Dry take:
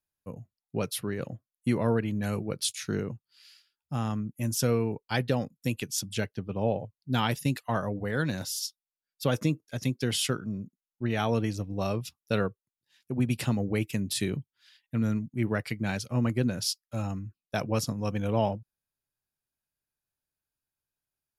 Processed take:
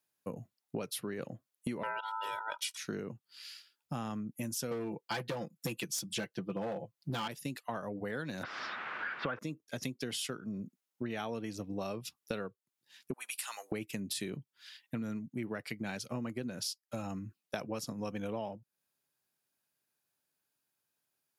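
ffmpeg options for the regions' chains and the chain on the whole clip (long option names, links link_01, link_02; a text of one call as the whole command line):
ffmpeg -i in.wav -filter_complex "[0:a]asettb=1/sr,asplit=3[link_01][link_02][link_03];[link_01]atrim=end=1.834[link_04];[link_02]atrim=start=1.83:end=2.77,asetpts=PTS-STARTPTS,afade=type=in:duration=0.004:curve=qsin,afade=type=out:start_time=0.936:duration=0.004:curve=qsin,aeval=exprs='val(0)*sin(2*PI*1100*n/s)':channel_layout=same,equalizer=frequency=3200:width_type=o:width=0.58:gain=8.5,aecho=1:1:2.1:0.92,atrim=end_sample=41454[link_05];[link_03]atrim=start=2.766[link_06];[link_04][link_05]acrossfade=duration=0.004:curve1=hsin:curve2=qsin[link_07];[link_07][link_06]acrossfade=duration=0.004:curve1=qsin:curve2=hsin,asettb=1/sr,asplit=3[link_08][link_09][link_10];[link_08]atrim=end=4.714[link_11];[link_09]atrim=start=4.71:end=7.28,asetpts=PTS-STARTPTS,afade=type=in:duration=0.004:curve=qsin,afade=type=out:start_time=2.566:duration=0.004:curve=qsin,aecho=1:1:5.9:0.74,atrim=end_sample=113337,acontrast=58,asoftclip=type=hard:threshold=-17dB[link_12];[link_10]atrim=start=7.276[link_13];[link_11][link_12]acrossfade=duration=0.004:curve1=hsin:curve2=qsin[link_14];[link_14][link_13]acrossfade=duration=0.004:curve1=qsin:curve2=hsin,asettb=1/sr,asplit=3[link_15][link_16][link_17];[link_15]atrim=end=8.434[link_18];[link_16]atrim=start=8.43:end=9.39,asetpts=PTS-STARTPTS,afade=type=in:duration=0.004:curve=qsin,afade=type=out:start_time=0.956:duration=0.004:curve=qsin,aeval=exprs='val(0)+0.5*0.0211*sgn(val(0))':channel_layout=same,lowpass=frequency=2600:width=0.5412,lowpass=frequency=2600:width=1.3066,equalizer=frequency=1400:width=1.2:gain=13[link_19];[link_17]atrim=start=9.386[link_20];[link_18][link_19]acrossfade=duration=0.004:curve1=hsin:curve2=qsin[link_21];[link_21][link_20]acrossfade=duration=0.004:curve1=qsin:curve2=hsin,asettb=1/sr,asplit=3[link_22][link_23][link_24];[link_22]atrim=end=13.134[link_25];[link_23]atrim=start=13.13:end=13.72,asetpts=PTS-STARTPTS,afade=type=in:duration=0.004:curve=qsin,afade=type=out:start_time=0.586:duration=0.004:curve=qsin,highpass=frequency=1000:width=0.5412,highpass=frequency=1000:width=1.3066,equalizer=frequency=9800:width_type=o:width=1.1:gain=11.5,acompressor=threshold=-38dB:ratio=3:attack=3.2:release=140:knee=1:detection=peak[link_26];[link_24]atrim=start=13.716[link_27];[link_25][link_26]acrossfade=duration=0.004:curve1=hsin:curve2=qsin[link_28];[link_28][link_27]acrossfade=duration=0.004:curve1=qsin:curve2=hsin,highpass=180,acompressor=threshold=-42dB:ratio=8,volume=6.5dB" out.wav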